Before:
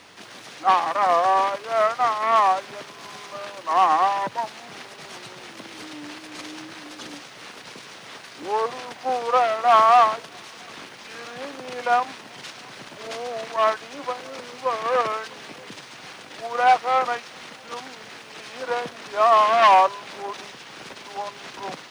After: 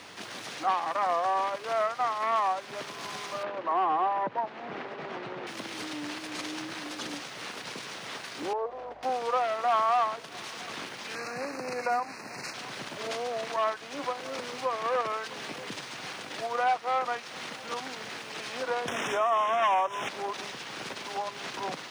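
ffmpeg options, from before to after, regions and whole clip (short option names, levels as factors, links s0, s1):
-filter_complex "[0:a]asettb=1/sr,asplit=3[s0][s1][s2];[s0]atrim=end=3.434[s3];[s1]atrim=start=3.43:end=5.47,asetpts=PTS-STARTPTS,afade=t=in:d=0.004:c=qsin,afade=t=out:st=2.036:d=0.004:c=qsin,volume=6.31,asoftclip=hard,volume=0.158,highpass=110,lowpass=2100,equalizer=f=410:w=0.62:g=5[s4];[s2]atrim=start=5.466[s5];[s3][s4]acrossfade=d=0.004:c1=hsin:c2=qsin[s6];[s6][s5]acrossfade=d=0.004:c1=qsin:c2=hsin,asettb=1/sr,asplit=3[s7][s8][s9];[s7]atrim=end=8.534[s10];[s8]atrim=start=8.53:end=9.03,asetpts=PTS-STARTPTS,afade=t=in:d=0.004:c=qsin,afade=t=out:st=0.496:d=0.004:c=qsin,bandpass=f=580:t=q:w=1.9,aeval=exprs='val(0)+0.001*(sin(2*PI*50*n/s)+sin(2*PI*2*50*n/s)/2+sin(2*PI*3*50*n/s)/3+sin(2*PI*4*50*n/s)/4+sin(2*PI*5*50*n/s)/5)':c=same[s11];[s9]atrim=start=9.026[s12];[s10][s11]acrossfade=d=0.004:c1=hsin:c2=qsin[s13];[s13][s12]acrossfade=d=0.004:c1=qsin:c2=hsin,asettb=1/sr,asplit=3[s14][s15][s16];[s14]atrim=end=11.154[s17];[s15]atrim=start=11.15:end=12.54,asetpts=PTS-STARTPTS,afade=t=in:d=0.004:c=qsin,afade=t=out:st=1.386:d=0.004:c=qsin,volume=5.96,asoftclip=hard,volume=0.168,asuperstop=centerf=3300:order=8:qfactor=2.4[s18];[s16]atrim=start=12.536[s19];[s17][s18]acrossfade=d=0.004:c1=hsin:c2=qsin[s20];[s20][s19]acrossfade=d=0.004:c1=qsin:c2=hsin,asettb=1/sr,asplit=3[s21][s22][s23];[s21]atrim=end=18.884[s24];[s22]atrim=start=18.88:end=20.09,asetpts=PTS-STARTPTS,afade=t=in:d=0.004:c=qsin,afade=t=out:st=1.206:d=0.004:c=qsin,asuperstop=centerf=4400:order=8:qfactor=2.6,acompressor=mode=upward:threshold=0.158:ratio=2.5:attack=3.2:release=140:knee=2.83:detection=peak[s25];[s23]atrim=start=20.086[s26];[s24][s25]acrossfade=d=0.004:c1=hsin:c2=qsin[s27];[s27][s26]acrossfade=d=0.004:c1=qsin:c2=hsin,highpass=63,acompressor=threshold=0.02:ratio=2,volume=1.19"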